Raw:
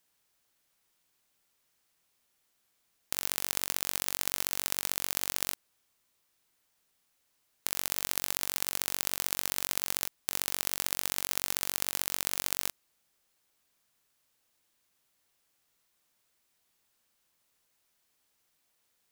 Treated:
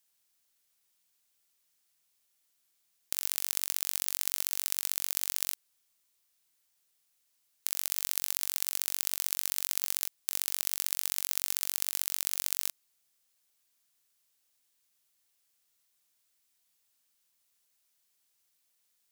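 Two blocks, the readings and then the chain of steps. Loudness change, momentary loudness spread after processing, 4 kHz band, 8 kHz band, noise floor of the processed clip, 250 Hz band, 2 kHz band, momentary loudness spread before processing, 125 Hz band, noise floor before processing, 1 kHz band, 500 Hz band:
+0.5 dB, 3 LU, -1.5 dB, +0.5 dB, -75 dBFS, -9.5 dB, -5.0 dB, 3 LU, no reading, -75 dBFS, -8.0 dB, -9.0 dB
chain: treble shelf 2.5 kHz +11 dB; trim -9.5 dB

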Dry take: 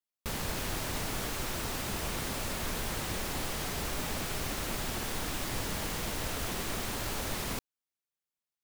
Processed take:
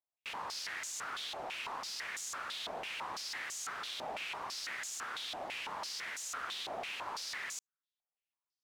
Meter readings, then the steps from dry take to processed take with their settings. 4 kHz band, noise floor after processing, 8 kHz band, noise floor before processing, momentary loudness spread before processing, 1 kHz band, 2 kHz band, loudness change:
-2.5 dB, under -85 dBFS, -5.0 dB, under -85 dBFS, 0 LU, -2.5 dB, -2.0 dB, -5.0 dB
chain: step-sequenced band-pass 6 Hz 720–6800 Hz; trim +6.5 dB

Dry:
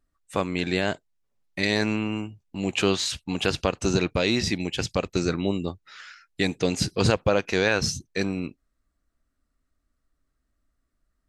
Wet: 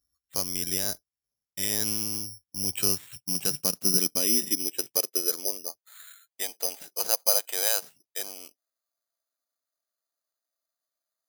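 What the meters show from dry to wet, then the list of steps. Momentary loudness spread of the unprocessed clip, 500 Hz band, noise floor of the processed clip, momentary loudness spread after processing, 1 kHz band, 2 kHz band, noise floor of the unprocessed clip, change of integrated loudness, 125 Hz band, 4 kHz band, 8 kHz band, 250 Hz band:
12 LU, -11.0 dB, under -85 dBFS, 13 LU, -10.0 dB, -13.0 dB, -77 dBFS, 0.0 dB, -14.5 dB, -1.5 dB, +8.5 dB, -12.0 dB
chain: high-pass sweep 61 Hz -> 660 Hz, 2.01–5.84 s; careless resampling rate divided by 8×, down filtered, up zero stuff; trim -13 dB

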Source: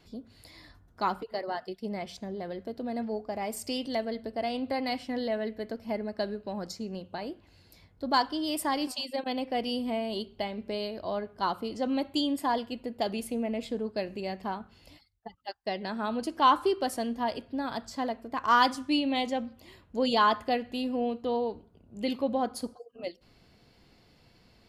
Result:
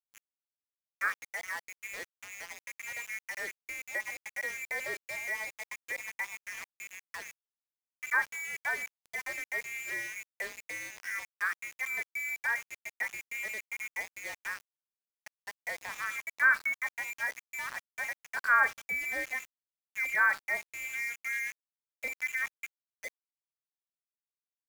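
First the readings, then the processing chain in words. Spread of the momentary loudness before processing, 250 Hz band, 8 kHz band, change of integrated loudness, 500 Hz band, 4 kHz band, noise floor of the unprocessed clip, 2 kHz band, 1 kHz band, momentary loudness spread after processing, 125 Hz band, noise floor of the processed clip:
13 LU, -29.5 dB, +2.5 dB, -2.5 dB, -17.5 dB, -14.5 dB, -62 dBFS, +9.5 dB, -10.0 dB, 17 LU, under -15 dB, under -85 dBFS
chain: frequency inversion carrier 2.6 kHz; three-band isolator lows -17 dB, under 270 Hz, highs -17 dB, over 2 kHz; small samples zeroed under -39 dBFS

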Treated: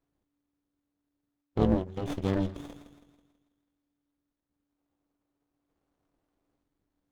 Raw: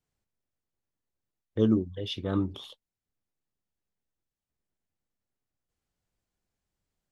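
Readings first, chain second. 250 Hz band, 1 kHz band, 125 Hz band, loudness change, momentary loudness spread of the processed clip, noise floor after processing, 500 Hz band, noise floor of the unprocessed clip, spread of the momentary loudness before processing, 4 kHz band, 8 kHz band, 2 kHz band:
-2.0 dB, +6.5 dB, +0.5 dB, -1.0 dB, 15 LU, -84 dBFS, 0.0 dB, under -85 dBFS, 17 LU, -9.5 dB, no reading, +1.5 dB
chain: feedback echo behind a high-pass 163 ms, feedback 46%, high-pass 2 kHz, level -8 dB; in parallel at 0 dB: compression, threshold -36 dBFS, peak gain reduction 16.5 dB; on the sum: time-frequency box 4.77–6.61 s, 290–1600 Hz +8 dB; AM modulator 290 Hz, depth 100%; sliding maximum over 17 samples; trim +1.5 dB

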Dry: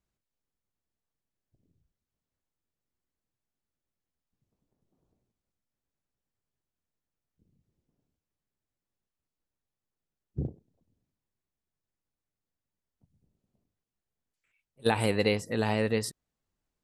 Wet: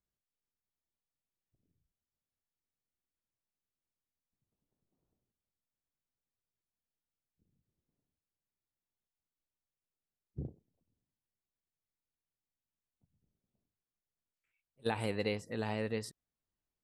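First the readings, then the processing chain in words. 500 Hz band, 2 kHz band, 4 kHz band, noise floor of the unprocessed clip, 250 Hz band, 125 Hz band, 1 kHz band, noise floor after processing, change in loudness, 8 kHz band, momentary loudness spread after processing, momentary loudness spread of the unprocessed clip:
-8.5 dB, -9.0 dB, -9.5 dB, under -85 dBFS, -8.5 dB, -8.5 dB, -8.5 dB, under -85 dBFS, -8.5 dB, -11.5 dB, 12 LU, 12 LU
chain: treble shelf 8.9 kHz -7 dB; trim -8.5 dB

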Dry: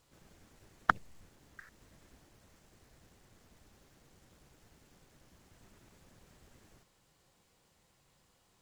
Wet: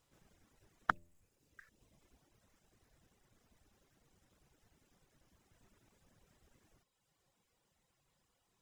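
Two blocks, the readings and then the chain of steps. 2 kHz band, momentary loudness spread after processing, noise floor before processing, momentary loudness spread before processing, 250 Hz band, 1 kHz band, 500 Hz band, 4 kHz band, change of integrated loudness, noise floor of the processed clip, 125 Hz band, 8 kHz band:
-6.0 dB, 8 LU, -71 dBFS, 8 LU, -6.5 dB, -6.0 dB, -6.5 dB, -6.5 dB, -6.0 dB, -81 dBFS, -7.5 dB, -8.0 dB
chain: reverb removal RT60 1.2 s; band-stop 4.4 kHz, Q 15; de-hum 85.23 Hz, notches 7; trim -6 dB

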